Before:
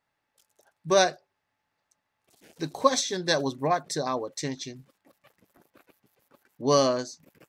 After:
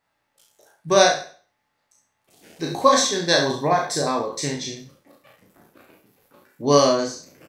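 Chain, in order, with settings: spectral sustain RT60 0.43 s; early reflections 35 ms -3.5 dB, 67 ms -9 dB; trim +3 dB

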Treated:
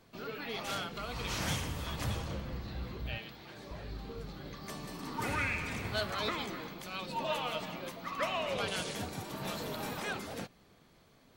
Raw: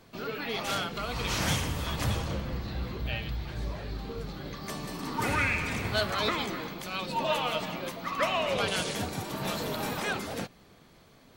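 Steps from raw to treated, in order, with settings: 3.18–3.71 s: high-pass 230 Hz 12 dB/octave; trim -6 dB

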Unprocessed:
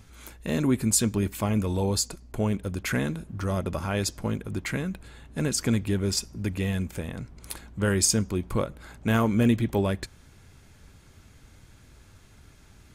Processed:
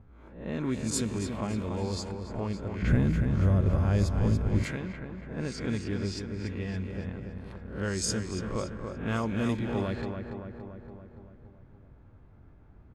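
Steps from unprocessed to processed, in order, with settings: reverse spectral sustain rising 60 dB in 0.46 s; feedback delay 284 ms, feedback 56%, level -6.5 dB; in parallel at -1.5 dB: compression, threshold -36 dBFS, peak gain reduction 19 dB; 2.82–4.64 s: on the sum: RIAA curve playback; level-controlled noise filter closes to 870 Hz, open at -12 dBFS; trim -9 dB

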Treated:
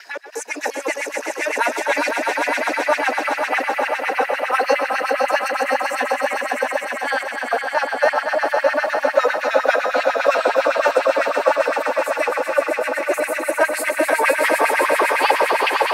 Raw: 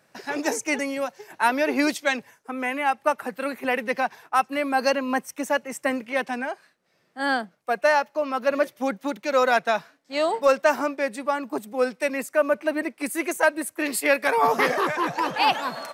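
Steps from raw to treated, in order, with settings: slices played last to first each 176 ms, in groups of 2; echo with a slow build-up 128 ms, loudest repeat 5, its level -6 dB; LFO high-pass sine 9.9 Hz 380–2300 Hz; trim -1.5 dB

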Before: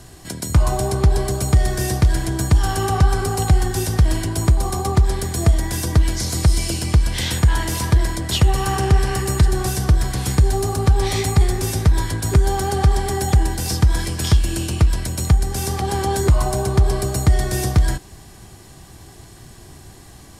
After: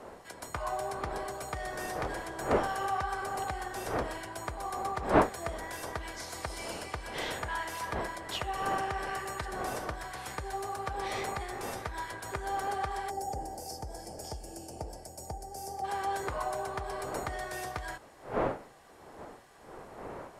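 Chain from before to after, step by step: wind noise 270 Hz -20 dBFS; three-band isolator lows -23 dB, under 520 Hz, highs -12 dB, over 2.4 kHz; time-frequency box 13.10–15.84 s, 920–4400 Hz -18 dB; trim -6.5 dB

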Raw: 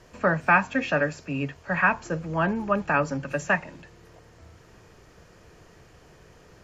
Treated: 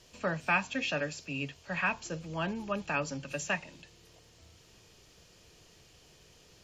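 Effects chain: resonant high shelf 2.3 kHz +10 dB, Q 1.5; trim -9 dB

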